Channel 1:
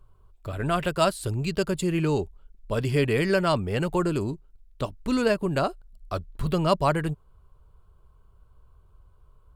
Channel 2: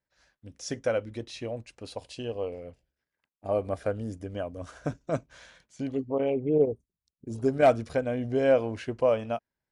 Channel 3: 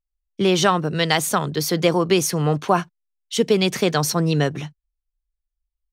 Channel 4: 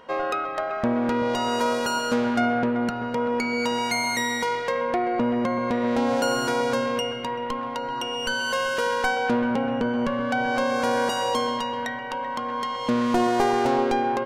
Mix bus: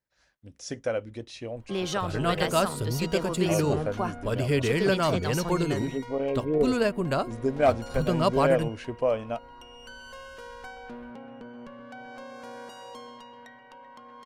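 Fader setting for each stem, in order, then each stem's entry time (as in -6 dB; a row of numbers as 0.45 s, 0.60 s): -2.0 dB, -1.5 dB, -12.5 dB, -19.0 dB; 1.55 s, 0.00 s, 1.30 s, 1.60 s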